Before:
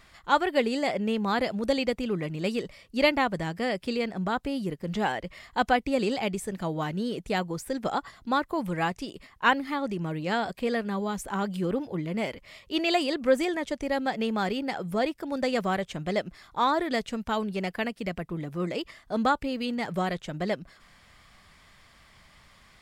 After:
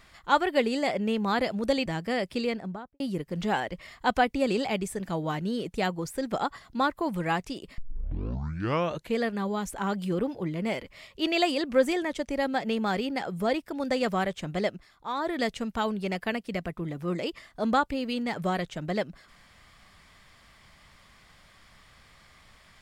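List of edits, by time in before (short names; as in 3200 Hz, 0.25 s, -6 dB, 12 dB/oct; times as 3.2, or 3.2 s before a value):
1.86–3.38 cut
3.96–4.52 studio fade out
9.3 tape start 1.41 s
16.17–16.9 dip -8.5 dB, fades 0.24 s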